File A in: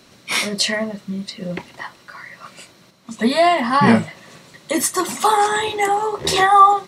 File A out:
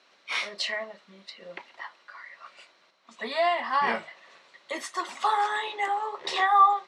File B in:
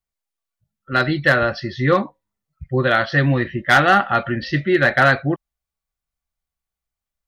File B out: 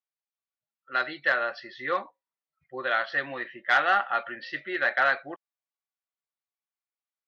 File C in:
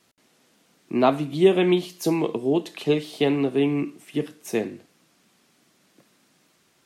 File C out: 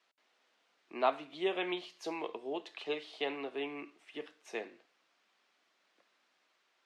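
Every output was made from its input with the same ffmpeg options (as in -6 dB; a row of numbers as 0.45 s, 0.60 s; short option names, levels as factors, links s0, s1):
-af "highpass=650,lowpass=3900,volume=0.422"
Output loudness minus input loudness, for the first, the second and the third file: -9.5 LU, -9.5 LU, -15.0 LU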